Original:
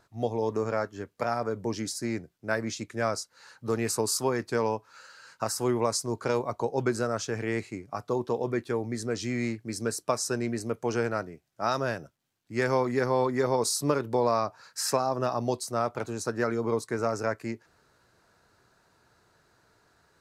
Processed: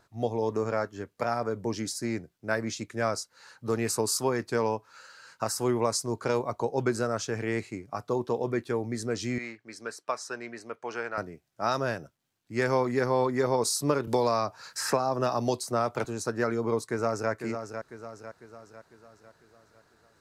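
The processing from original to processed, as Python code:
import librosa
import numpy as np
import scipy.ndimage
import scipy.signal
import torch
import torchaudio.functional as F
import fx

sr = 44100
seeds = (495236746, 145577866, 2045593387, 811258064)

y = fx.bandpass_q(x, sr, hz=1600.0, q=0.7, at=(9.38, 11.18))
y = fx.band_squash(y, sr, depth_pct=70, at=(14.07, 16.05))
y = fx.echo_throw(y, sr, start_s=16.88, length_s=0.43, ms=500, feedback_pct=50, wet_db=-8.0)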